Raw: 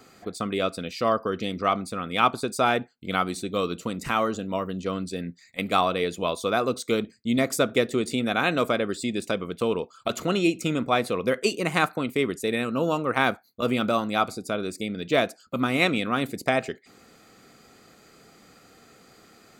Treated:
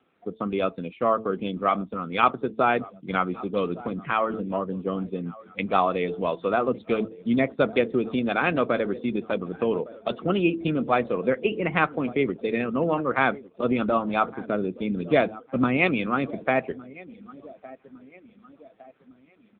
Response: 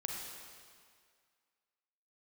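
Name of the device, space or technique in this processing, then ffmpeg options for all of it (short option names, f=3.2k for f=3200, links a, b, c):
mobile call with aggressive noise cancelling: -filter_complex "[0:a]lowpass=5.6k,bandreject=f=110.5:t=h:w=4,bandreject=f=221:t=h:w=4,bandreject=f=331.5:t=h:w=4,bandreject=f=442:t=h:w=4,asplit=3[a][b][c];[a]afade=t=out:st=14.42:d=0.02[d];[b]lowshelf=f=270:g=5,afade=t=in:st=14.42:d=0.02,afade=t=out:st=15.73:d=0.02[e];[c]afade=t=in:st=15.73:d=0.02[f];[d][e][f]amix=inputs=3:normalize=0,highpass=f=120:w=0.5412,highpass=f=120:w=1.3066,aecho=1:1:1159|2318|3477|4636|5795:0.126|0.0755|0.0453|0.0272|0.0163,afftdn=nr=14:nf=-34,volume=1.5dB" -ar 8000 -c:a libopencore_amrnb -b:a 7950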